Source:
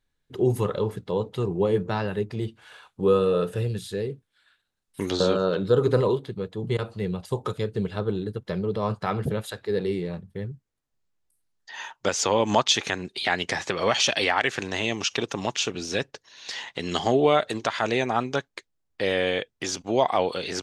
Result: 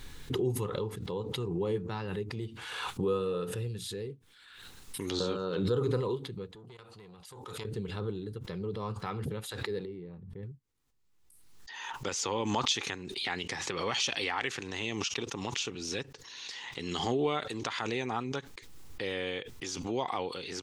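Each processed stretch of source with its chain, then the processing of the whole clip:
6.55–7.65 low shelf 400 Hz -11 dB + compressor 10:1, threshold -34 dBFS + core saturation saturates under 980 Hz
9.85–10.43 LPF 1000 Hz 6 dB/oct + compressor 1.5:1, threshold -37 dBFS
whole clip: thirty-one-band EQ 200 Hz -3 dB, 630 Hz -12 dB, 1600 Hz -4 dB; backwards sustainer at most 36 dB/s; gain -8.5 dB

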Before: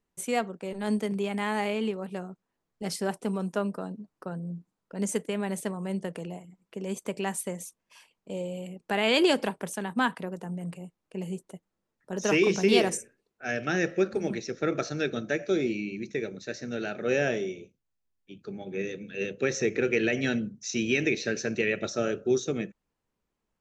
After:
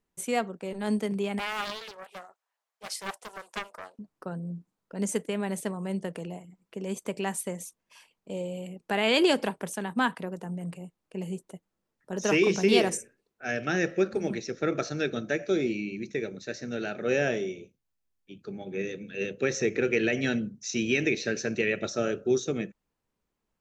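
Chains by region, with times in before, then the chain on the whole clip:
1.39–3.99 HPF 650 Hz 24 dB/oct + Doppler distortion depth 0.73 ms
whole clip: dry

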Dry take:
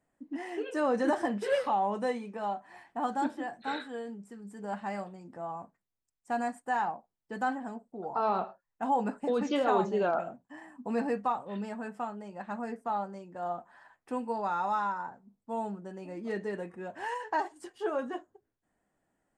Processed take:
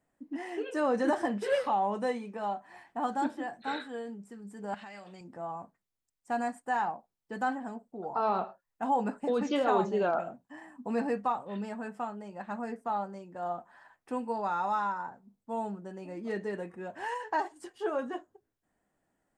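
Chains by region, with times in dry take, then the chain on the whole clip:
4.74–5.21 weighting filter D + compressor, threshold -43 dBFS
whole clip: dry

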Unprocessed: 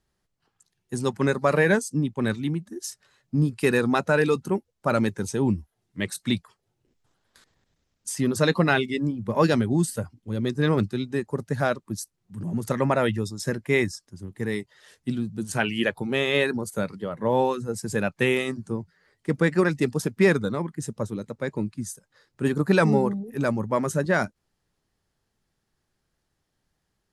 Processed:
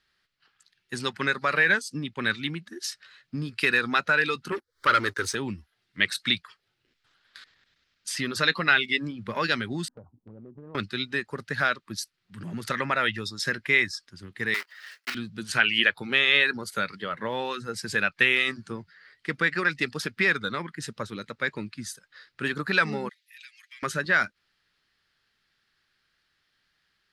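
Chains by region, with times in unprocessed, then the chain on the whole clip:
4.52–5.35 fixed phaser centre 720 Hz, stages 6 + sample leveller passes 2 + upward compressor, threshold -41 dBFS
9.88–10.75 steep low-pass 960 Hz 48 dB/oct + compressor 12:1, threshold -36 dBFS
14.54–15.15 block floating point 3-bit + HPF 610 Hz + bell 3500 Hz -8.5 dB 0.46 oct
23.09–23.83 steep high-pass 2100 Hz + comb 5.6 ms, depth 96% + compressor 8:1, threshold -55 dBFS
whole clip: low shelf 200 Hz -5 dB; compressor 2.5:1, threshold -26 dBFS; band shelf 2500 Hz +15 dB 2.3 oct; gain -3.5 dB

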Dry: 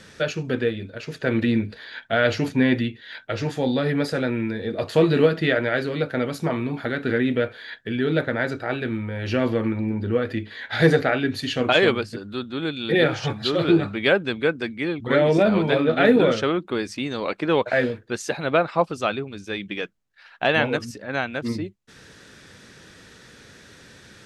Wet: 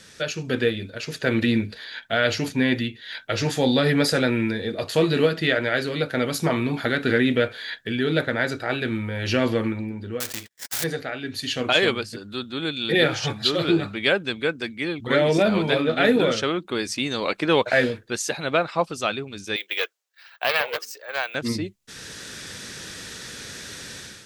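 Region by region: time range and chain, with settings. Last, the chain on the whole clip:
10.2–10.84 switching dead time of 0.11 ms + gate -37 dBFS, range -51 dB + spectral compressor 2:1
19.56–21.35 steep high-pass 430 Hz + careless resampling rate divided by 2×, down filtered, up hold + Doppler distortion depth 0.17 ms
whole clip: high shelf 3100 Hz +11.5 dB; AGC; gain -5.5 dB

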